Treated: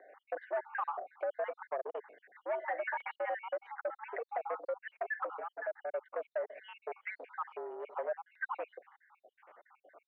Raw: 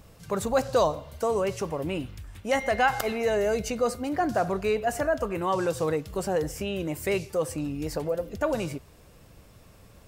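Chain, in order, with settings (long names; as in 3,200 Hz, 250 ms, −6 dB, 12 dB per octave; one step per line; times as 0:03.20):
time-frequency cells dropped at random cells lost 67%
downward compressor 10 to 1, threshold −31 dBFS, peak gain reduction 13 dB
soft clipping −33.5 dBFS, distortion −11 dB
single-sideband voice off tune +110 Hz 370–2,000 Hz
0:05.40–0:05.93: phaser with its sweep stopped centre 720 Hz, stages 8
level +4.5 dB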